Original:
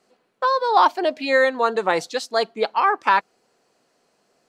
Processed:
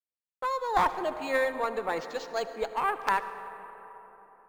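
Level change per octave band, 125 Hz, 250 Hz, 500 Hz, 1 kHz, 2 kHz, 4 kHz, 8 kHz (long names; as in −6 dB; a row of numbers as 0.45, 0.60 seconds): −4.0, −9.5, −9.5, −9.5, −9.5, −13.0, −8.0 decibels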